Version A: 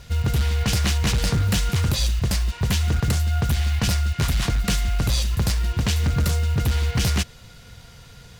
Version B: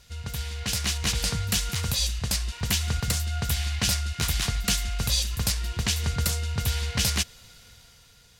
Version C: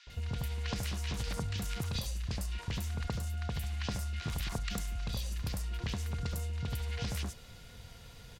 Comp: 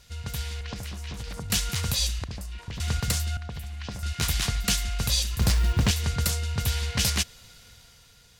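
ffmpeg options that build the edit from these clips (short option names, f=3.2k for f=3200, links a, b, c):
-filter_complex "[2:a]asplit=3[a][b][c];[1:a]asplit=5[d][e][f][g][h];[d]atrim=end=0.612[i];[a]atrim=start=0.608:end=1.502[j];[e]atrim=start=1.498:end=2.242[k];[b]atrim=start=2.238:end=2.802[l];[f]atrim=start=2.798:end=3.372[m];[c]atrim=start=3.368:end=4.032[n];[g]atrim=start=4.028:end=5.412[o];[0:a]atrim=start=5.408:end=5.912[p];[h]atrim=start=5.908[q];[i][j]acrossfade=d=0.004:c1=hsin:c2=hsin[r];[r][k]acrossfade=d=0.004:c1=hsin:c2=hsin[s];[s][l]acrossfade=d=0.004:c1=hsin:c2=hsin[t];[t][m]acrossfade=d=0.004:c1=hsin:c2=hsin[u];[u][n]acrossfade=d=0.004:c1=hsin:c2=hsin[v];[v][o]acrossfade=d=0.004:c1=hsin:c2=hsin[w];[w][p]acrossfade=d=0.004:c1=hsin:c2=hsin[x];[x][q]acrossfade=d=0.004:c1=hsin:c2=hsin"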